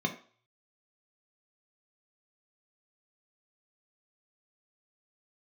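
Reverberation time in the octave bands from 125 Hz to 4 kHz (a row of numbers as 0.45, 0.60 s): 0.60, 0.35, 0.45, 0.45, 0.40, 0.45 s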